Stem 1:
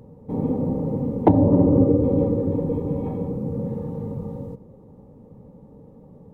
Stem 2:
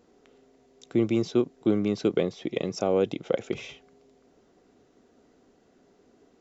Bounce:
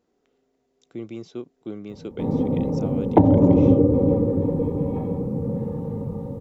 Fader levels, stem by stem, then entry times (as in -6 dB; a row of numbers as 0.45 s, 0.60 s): +1.0 dB, -10.5 dB; 1.90 s, 0.00 s